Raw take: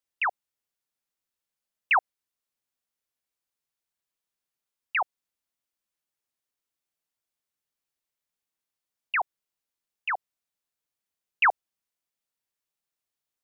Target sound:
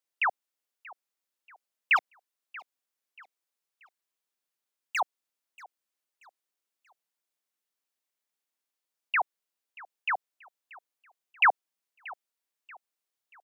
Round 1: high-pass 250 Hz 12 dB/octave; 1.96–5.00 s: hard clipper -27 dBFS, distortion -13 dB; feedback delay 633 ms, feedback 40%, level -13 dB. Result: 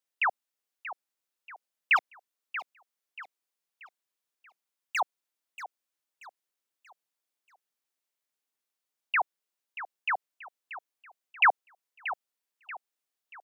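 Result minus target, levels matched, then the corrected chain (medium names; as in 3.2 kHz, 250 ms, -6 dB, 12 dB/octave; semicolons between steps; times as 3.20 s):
echo-to-direct +8 dB
high-pass 250 Hz 12 dB/octave; 1.96–5.00 s: hard clipper -27 dBFS, distortion -13 dB; feedback delay 633 ms, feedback 40%, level -21 dB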